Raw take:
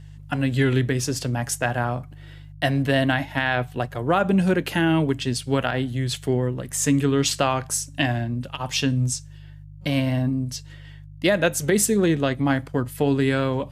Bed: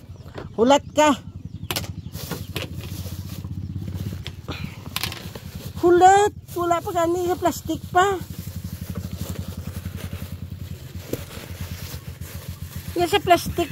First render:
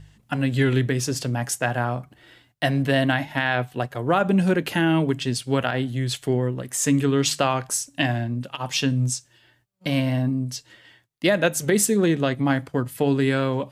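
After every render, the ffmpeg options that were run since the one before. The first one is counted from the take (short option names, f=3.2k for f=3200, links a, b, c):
-af "bandreject=f=50:t=h:w=4,bandreject=f=100:t=h:w=4,bandreject=f=150:t=h:w=4"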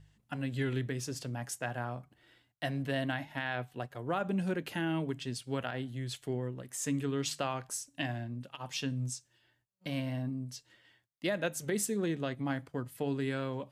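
-af "volume=-13dB"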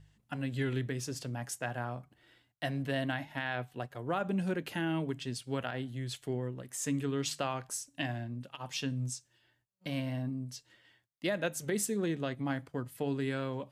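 -af anull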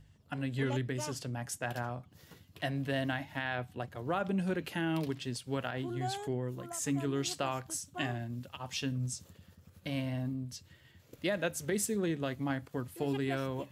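-filter_complex "[1:a]volume=-26dB[a];[0:a][a]amix=inputs=2:normalize=0"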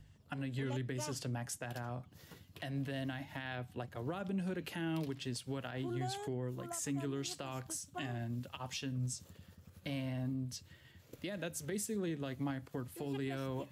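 -filter_complex "[0:a]acrossover=split=380|3000[a][b][c];[b]acompressor=threshold=-38dB:ratio=6[d];[a][d][c]amix=inputs=3:normalize=0,alimiter=level_in=6dB:limit=-24dB:level=0:latency=1:release=227,volume=-6dB"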